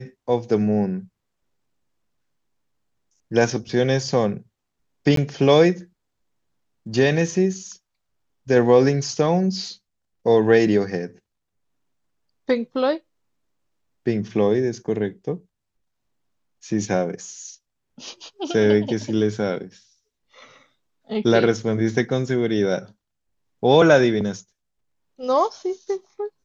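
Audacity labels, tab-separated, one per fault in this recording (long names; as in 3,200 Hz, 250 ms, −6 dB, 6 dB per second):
5.160000	5.170000	drop-out 13 ms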